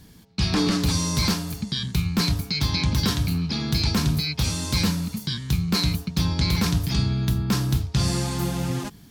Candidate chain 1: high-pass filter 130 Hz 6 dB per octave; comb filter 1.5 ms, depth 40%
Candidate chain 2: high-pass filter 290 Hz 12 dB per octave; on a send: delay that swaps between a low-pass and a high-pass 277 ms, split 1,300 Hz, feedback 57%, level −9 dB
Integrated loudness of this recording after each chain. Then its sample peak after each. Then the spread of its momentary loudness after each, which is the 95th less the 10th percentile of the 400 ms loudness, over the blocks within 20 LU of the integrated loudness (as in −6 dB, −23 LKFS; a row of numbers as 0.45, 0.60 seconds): −25.0, −27.5 LKFS; −11.5, −12.0 dBFS; 5, 6 LU